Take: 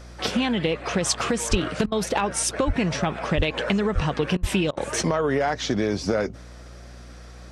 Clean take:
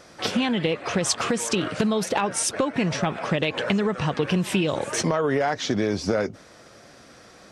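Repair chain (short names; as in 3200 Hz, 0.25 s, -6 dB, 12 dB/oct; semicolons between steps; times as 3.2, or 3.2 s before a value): de-hum 59.9 Hz, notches 6; de-plosive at 1.5/1.84/2.66/3.36/3.94/4.4; interpolate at 1.86/4.37/4.71, 58 ms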